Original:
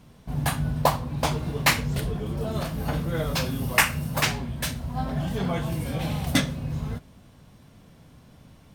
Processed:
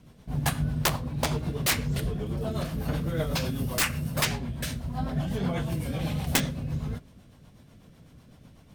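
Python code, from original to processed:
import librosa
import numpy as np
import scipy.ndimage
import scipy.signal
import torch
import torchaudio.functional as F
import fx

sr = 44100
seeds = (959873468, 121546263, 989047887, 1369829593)

y = (np.mod(10.0 ** (13.0 / 20.0) * x + 1.0, 2.0) - 1.0) / 10.0 ** (13.0 / 20.0)
y = fx.rotary(y, sr, hz=8.0)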